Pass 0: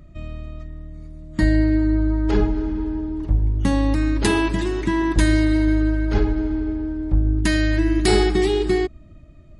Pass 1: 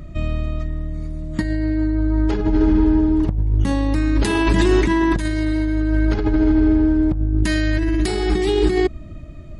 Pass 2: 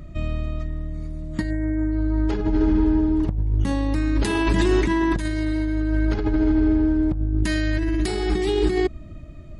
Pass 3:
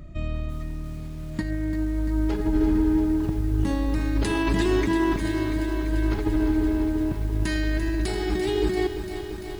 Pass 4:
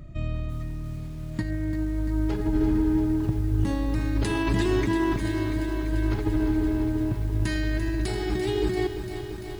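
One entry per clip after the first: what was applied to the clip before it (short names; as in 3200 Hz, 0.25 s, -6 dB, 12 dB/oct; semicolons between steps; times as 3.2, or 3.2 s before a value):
negative-ratio compressor -23 dBFS, ratio -1; gain +6 dB
spectral gain 1.5–1.92, 2200–6900 Hz -26 dB; gain -3.5 dB
lo-fi delay 0.342 s, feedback 80%, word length 7-bit, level -9.5 dB; gain -3 dB
bell 120 Hz +11.5 dB 0.3 oct; gain -2 dB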